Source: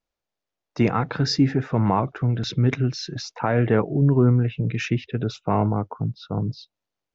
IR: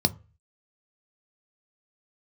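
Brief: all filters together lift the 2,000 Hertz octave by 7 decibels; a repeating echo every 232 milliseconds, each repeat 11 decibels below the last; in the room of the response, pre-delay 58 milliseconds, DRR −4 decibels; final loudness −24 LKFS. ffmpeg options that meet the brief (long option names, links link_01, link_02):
-filter_complex "[0:a]equalizer=frequency=2000:width_type=o:gain=9,aecho=1:1:232|464|696:0.282|0.0789|0.0221,asplit=2[link_01][link_02];[1:a]atrim=start_sample=2205,adelay=58[link_03];[link_02][link_03]afir=irnorm=-1:irlink=0,volume=-6dB[link_04];[link_01][link_04]amix=inputs=2:normalize=0,volume=-14.5dB"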